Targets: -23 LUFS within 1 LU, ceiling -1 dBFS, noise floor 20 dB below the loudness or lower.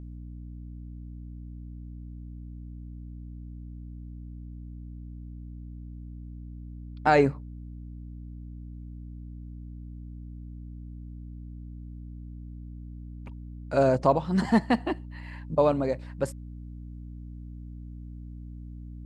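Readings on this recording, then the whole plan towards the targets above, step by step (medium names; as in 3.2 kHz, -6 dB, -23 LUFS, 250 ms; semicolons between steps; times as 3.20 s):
hum 60 Hz; highest harmonic 300 Hz; hum level -38 dBFS; loudness -26.0 LUFS; peak level -8.0 dBFS; loudness target -23.0 LUFS
-> de-hum 60 Hz, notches 5; trim +3 dB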